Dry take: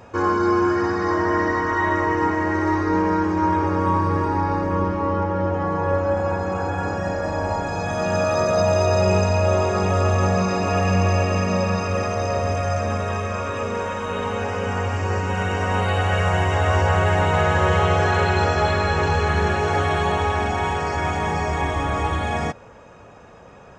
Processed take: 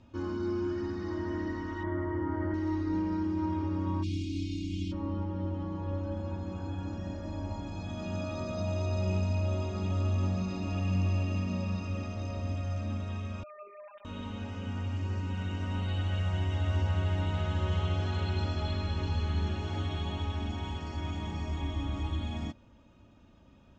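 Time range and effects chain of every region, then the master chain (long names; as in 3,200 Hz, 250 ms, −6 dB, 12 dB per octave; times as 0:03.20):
0:01.83–0:02.54: Savitzky-Golay smoothing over 41 samples + double-tracking delay 40 ms −4 dB + envelope flattener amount 100%
0:04.02–0:04.91: spectral envelope flattened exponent 0.6 + linear-phase brick-wall band-stop 370–2,100 Hz
0:13.43–0:14.05: three sine waves on the formant tracks + low-pass filter 1,600 Hz 6 dB per octave + phases set to zero 202 Hz
whole clip: low-pass filter 3,700 Hz 12 dB per octave; flat-topped bell 950 Hz −14.5 dB 2.9 octaves; comb filter 3.3 ms, depth 49%; level −7.5 dB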